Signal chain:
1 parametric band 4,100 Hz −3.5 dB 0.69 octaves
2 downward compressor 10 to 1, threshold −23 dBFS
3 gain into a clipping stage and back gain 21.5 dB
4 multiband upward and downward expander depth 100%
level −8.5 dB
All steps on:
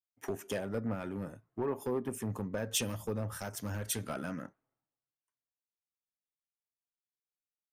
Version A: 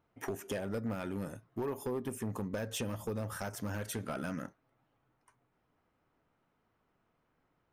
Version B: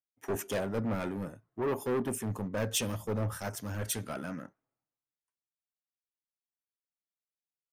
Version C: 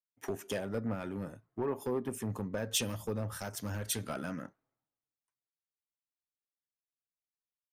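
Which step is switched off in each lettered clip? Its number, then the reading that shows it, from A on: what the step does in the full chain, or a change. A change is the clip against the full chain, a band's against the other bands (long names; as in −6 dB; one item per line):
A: 4, 8 kHz band −5.5 dB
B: 2, average gain reduction 4.0 dB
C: 1, 4 kHz band +2.0 dB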